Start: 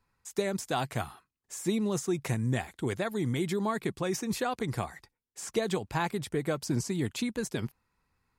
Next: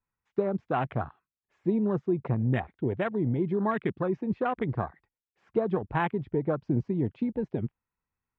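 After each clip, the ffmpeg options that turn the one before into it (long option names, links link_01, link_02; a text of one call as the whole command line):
ffmpeg -i in.wav -af "lowpass=frequency=2800:width=0.5412,lowpass=frequency=2800:width=1.3066,afwtdn=0.0141,volume=3dB" out.wav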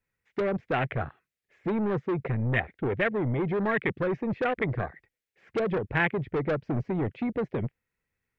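ffmpeg -i in.wav -filter_complex "[0:a]equalizer=frequency=125:width_type=o:width=1:gain=3,equalizer=frequency=500:width_type=o:width=1:gain=8,equalizer=frequency=1000:width_type=o:width=1:gain=-9,equalizer=frequency=2000:width_type=o:width=1:gain=11,acrossover=split=1100[link_01][link_02];[link_01]asoftclip=type=tanh:threshold=-27dB[link_03];[link_03][link_02]amix=inputs=2:normalize=0,volume=2.5dB" out.wav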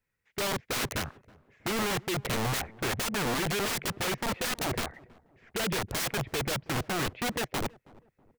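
ffmpeg -i in.wav -filter_complex "[0:a]aeval=exprs='(mod(21.1*val(0)+1,2)-1)/21.1':channel_layout=same,asplit=2[link_01][link_02];[link_02]adelay=323,lowpass=frequency=930:poles=1,volume=-21.5dB,asplit=2[link_03][link_04];[link_04]adelay=323,lowpass=frequency=930:poles=1,volume=0.41,asplit=2[link_05][link_06];[link_06]adelay=323,lowpass=frequency=930:poles=1,volume=0.41[link_07];[link_01][link_03][link_05][link_07]amix=inputs=4:normalize=0" out.wav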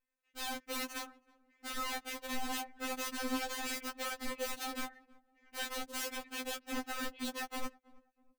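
ffmpeg -i in.wav -af "afftfilt=real='re*3.46*eq(mod(b,12),0)':imag='im*3.46*eq(mod(b,12),0)':win_size=2048:overlap=0.75,volume=-5.5dB" out.wav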